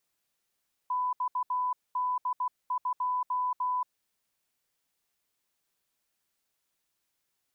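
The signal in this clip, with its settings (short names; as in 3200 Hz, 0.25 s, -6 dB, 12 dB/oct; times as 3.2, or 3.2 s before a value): Morse "XD2" 16 wpm 999 Hz -26.5 dBFS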